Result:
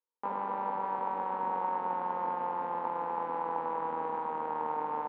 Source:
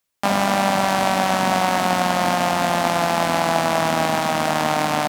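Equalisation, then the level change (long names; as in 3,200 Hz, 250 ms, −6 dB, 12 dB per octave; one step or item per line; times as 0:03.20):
pair of resonant band-passes 660 Hz, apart 0.95 octaves
high-frequency loss of the air 410 metres
−3.5 dB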